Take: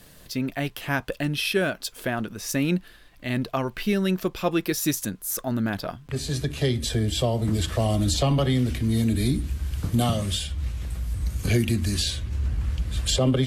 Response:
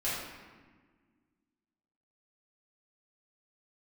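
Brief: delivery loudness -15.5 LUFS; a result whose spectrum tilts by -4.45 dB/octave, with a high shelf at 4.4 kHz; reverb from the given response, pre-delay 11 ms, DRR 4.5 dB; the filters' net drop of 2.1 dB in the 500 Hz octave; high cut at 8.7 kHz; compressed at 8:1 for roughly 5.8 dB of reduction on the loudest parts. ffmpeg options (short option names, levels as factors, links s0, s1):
-filter_complex "[0:a]lowpass=8700,equalizer=f=500:t=o:g=-3,highshelf=f=4400:g=5.5,acompressor=threshold=0.0631:ratio=8,asplit=2[s0][s1];[1:a]atrim=start_sample=2205,adelay=11[s2];[s1][s2]afir=irnorm=-1:irlink=0,volume=0.266[s3];[s0][s3]amix=inputs=2:normalize=0,volume=4.22"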